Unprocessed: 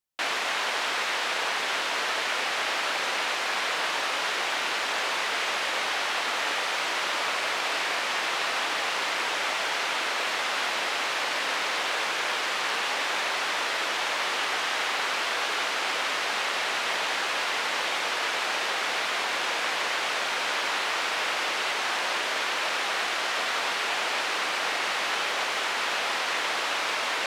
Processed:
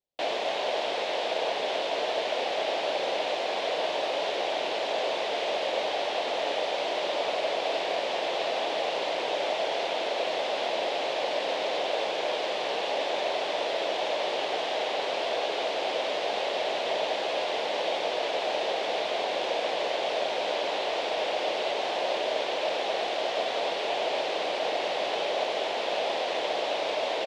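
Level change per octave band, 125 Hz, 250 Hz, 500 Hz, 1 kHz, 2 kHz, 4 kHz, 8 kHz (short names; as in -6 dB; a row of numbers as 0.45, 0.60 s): n/a, +2.5 dB, +8.0 dB, -1.5 dB, -8.5 dB, -3.5 dB, -11.5 dB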